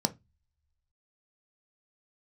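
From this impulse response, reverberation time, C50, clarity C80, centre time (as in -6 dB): 0.20 s, 21.0 dB, 30.0 dB, 4 ms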